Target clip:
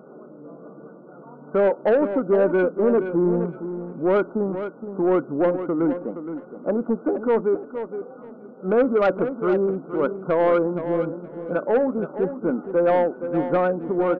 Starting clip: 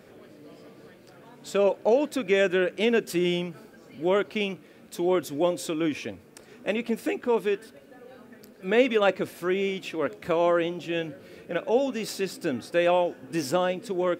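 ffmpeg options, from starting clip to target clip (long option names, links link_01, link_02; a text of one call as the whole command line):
ffmpeg -i in.wav -filter_complex "[0:a]afftfilt=real='re*between(b*sr/4096,130,1500)':imag='im*between(b*sr/4096,130,1500)':win_size=4096:overlap=0.75,asoftclip=type=tanh:threshold=-19dB,asplit=2[link_01][link_02];[link_02]aecho=0:1:469|938|1407:0.316|0.0569|0.0102[link_03];[link_01][link_03]amix=inputs=2:normalize=0,volume=6.5dB" out.wav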